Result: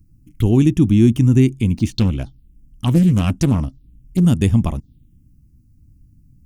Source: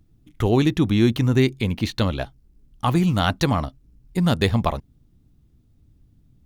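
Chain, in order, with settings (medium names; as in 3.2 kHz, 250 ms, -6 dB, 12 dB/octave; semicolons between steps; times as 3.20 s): touch-sensitive phaser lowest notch 580 Hz, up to 4.1 kHz, full sweep at -20 dBFS; high-order bell 940 Hz -13.5 dB 2.6 oct; 1.93–4.25 s: loudspeaker Doppler distortion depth 0.38 ms; trim +6.5 dB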